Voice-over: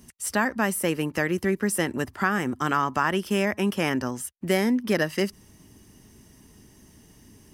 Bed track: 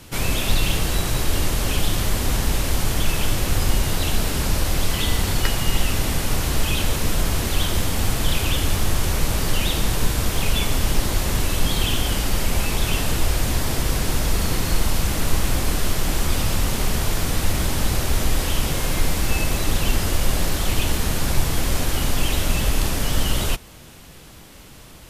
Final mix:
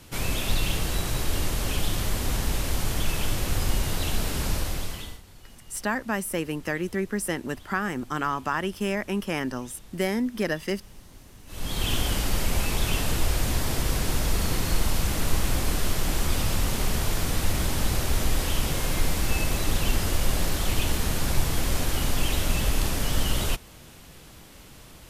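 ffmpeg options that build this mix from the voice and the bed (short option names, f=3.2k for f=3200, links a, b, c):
-filter_complex "[0:a]adelay=5500,volume=-3.5dB[a];[1:a]volume=19dB,afade=t=out:st=4.51:d=0.7:silence=0.0707946,afade=t=in:st=11.46:d=0.47:silence=0.0595662[b];[a][b]amix=inputs=2:normalize=0"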